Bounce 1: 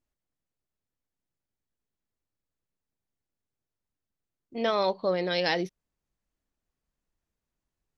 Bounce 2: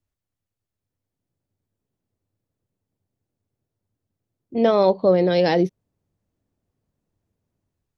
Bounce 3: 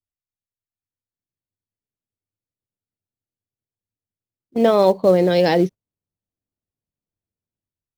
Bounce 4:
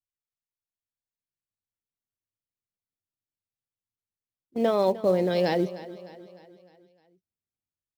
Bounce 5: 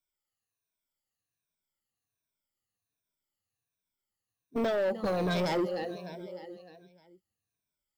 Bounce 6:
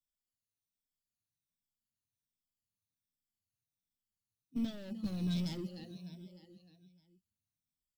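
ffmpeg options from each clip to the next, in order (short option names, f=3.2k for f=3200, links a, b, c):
-filter_complex "[0:a]equalizer=f=96:w=2.2:g=14,acrossover=split=110|750|2300[a][b][c][d];[b]dynaudnorm=f=690:g=3:m=12dB[e];[a][e][c][d]amix=inputs=4:normalize=0"
-filter_complex "[0:a]asplit=2[a][b];[b]acrusher=bits=4:mode=log:mix=0:aa=0.000001,volume=-10.5dB[c];[a][c]amix=inputs=2:normalize=0,agate=range=-18dB:threshold=-26dB:ratio=16:detection=peak"
-af "aecho=1:1:304|608|912|1216|1520:0.15|0.0763|0.0389|0.0198|0.0101,volume=-8.5dB"
-af "afftfilt=real='re*pow(10,16/40*sin(2*PI*(1.6*log(max(b,1)*sr/1024/100)/log(2)-(-1.3)*(pts-256)/sr)))':imag='im*pow(10,16/40*sin(2*PI*(1.6*log(max(b,1)*sr/1024/100)/log(2)-(-1.3)*(pts-256)/sr)))':win_size=1024:overlap=0.75,acompressor=threshold=-23dB:ratio=6,asoftclip=type=tanh:threshold=-27dB,volume=2.5dB"
-filter_complex "[0:a]firequalizer=gain_entry='entry(250,0);entry(430,-23);entry(1600,-20);entry(3400,-5)':delay=0.05:min_phase=1,acrossover=split=140[a][b];[a]acrusher=samples=16:mix=1:aa=0.000001[c];[c][b]amix=inputs=2:normalize=0,volume=-1.5dB"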